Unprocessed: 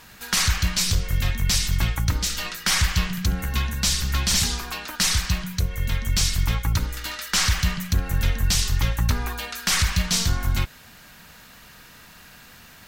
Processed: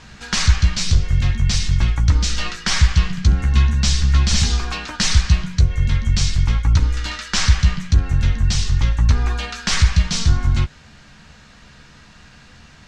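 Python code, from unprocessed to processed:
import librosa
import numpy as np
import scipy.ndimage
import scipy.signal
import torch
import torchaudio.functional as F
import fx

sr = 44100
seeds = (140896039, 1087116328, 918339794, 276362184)

y = scipy.signal.sosfilt(scipy.signal.butter(4, 7100.0, 'lowpass', fs=sr, output='sos'), x)
y = fx.low_shelf(y, sr, hz=240.0, db=8.5)
y = fx.rider(y, sr, range_db=4, speed_s=0.5)
y = fx.doubler(y, sr, ms=14.0, db=-8.0)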